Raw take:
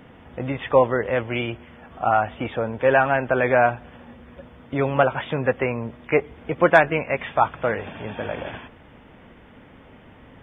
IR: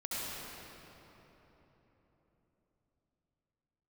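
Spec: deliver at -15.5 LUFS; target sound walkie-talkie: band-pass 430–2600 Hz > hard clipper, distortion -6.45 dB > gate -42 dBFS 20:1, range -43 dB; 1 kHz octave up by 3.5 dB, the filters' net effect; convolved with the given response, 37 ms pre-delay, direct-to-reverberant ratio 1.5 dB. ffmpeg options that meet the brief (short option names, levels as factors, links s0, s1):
-filter_complex "[0:a]equalizer=f=1000:t=o:g=5.5,asplit=2[s0][s1];[1:a]atrim=start_sample=2205,adelay=37[s2];[s1][s2]afir=irnorm=-1:irlink=0,volume=0.501[s3];[s0][s3]amix=inputs=2:normalize=0,highpass=430,lowpass=2600,asoftclip=type=hard:threshold=0.133,agate=range=0.00708:threshold=0.00794:ratio=20,volume=2.24"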